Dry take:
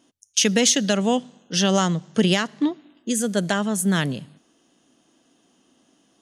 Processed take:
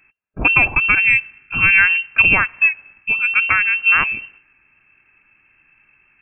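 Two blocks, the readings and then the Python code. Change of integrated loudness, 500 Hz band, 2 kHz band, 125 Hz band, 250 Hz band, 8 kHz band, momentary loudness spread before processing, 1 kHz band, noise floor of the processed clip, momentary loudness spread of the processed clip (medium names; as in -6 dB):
+8.0 dB, -12.0 dB, +17.5 dB, -5.5 dB, -13.0 dB, under -40 dB, 9 LU, +4.0 dB, -59 dBFS, 9 LU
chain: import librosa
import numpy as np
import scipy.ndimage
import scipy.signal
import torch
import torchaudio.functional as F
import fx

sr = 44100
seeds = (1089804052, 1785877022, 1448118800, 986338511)

y = scipy.signal.sosfilt(scipy.signal.cheby1(8, 1.0, 160.0, 'highpass', fs=sr, output='sos'), x)
y = fx.peak_eq(y, sr, hz=1300.0, db=8.5, octaves=0.22)
y = fx.freq_invert(y, sr, carrier_hz=2900)
y = y * librosa.db_to_amplitude(6.5)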